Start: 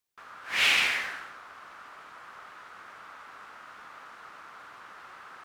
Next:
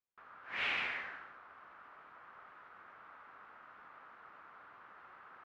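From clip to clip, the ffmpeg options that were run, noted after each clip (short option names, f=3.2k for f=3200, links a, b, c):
-af "lowpass=2.1k,volume=-8dB"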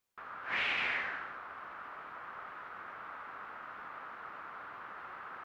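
-af "alimiter=level_in=9.5dB:limit=-24dB:level=0:latency=1:release=370,volume=-9.5dB,volume=10dB"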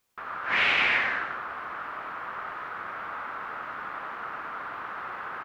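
-af "aecho=1:1:94:0.531,volume=9dB"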